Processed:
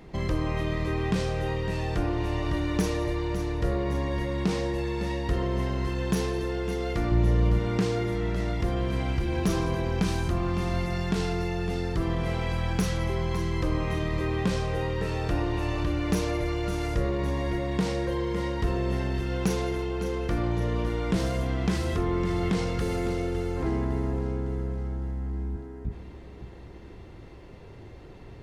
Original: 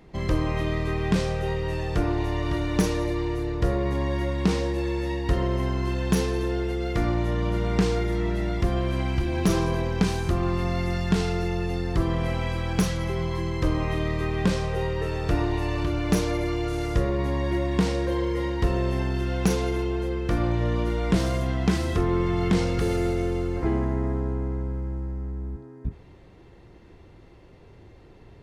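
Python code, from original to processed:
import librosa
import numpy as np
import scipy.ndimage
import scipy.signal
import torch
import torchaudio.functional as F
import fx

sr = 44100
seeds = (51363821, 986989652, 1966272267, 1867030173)

p1 = fx.low_shelf(x, sr, hz=240.0, db=10.5, at=(7.11, 7.59))
p2 = fx.over_compress(p1, sr, threshold_db=-32.0, ratio=-1.0)
p3 = p1 + (p2 * librosa.db_to_amplitude(-2.5))
p4 = fx.echo_feedback(p3, sr, ms=557, feedback_pct=49, wet_db=-11)
y = p4 * librosa.db_to_amplitude(-5.0)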